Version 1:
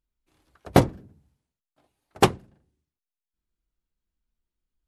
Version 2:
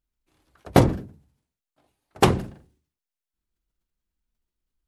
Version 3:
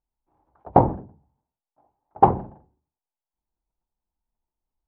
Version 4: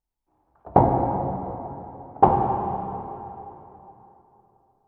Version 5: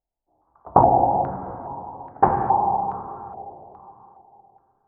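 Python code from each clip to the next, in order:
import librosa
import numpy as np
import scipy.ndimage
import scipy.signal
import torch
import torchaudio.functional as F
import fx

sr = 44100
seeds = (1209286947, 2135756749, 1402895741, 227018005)

y1 = fx.sustainer(x, sr, db_per_s=110.0)
y2 = fx.lowpass_res(y1, sr, hz=860.0, q=4.9)
y2 = F.gain(torch.from_numpy(y2), -4.0).numpy()
y3 = fx.rev_plate(y2, sr, seeds[0], rt60_s=3.3, hf_ratio=0.8, predelay_ms=0, drr_db=1.0)
y3 = F.gain(torch.from_numpy(y3), -1.0).numpy()
y4 = fx.filter_held_lowpass(y3, sr, hz=2.4, low_hz=670.0, high_hz=1700.0)
y4 = F.gain(torch.from_numpy(y4), -3.0).numpy()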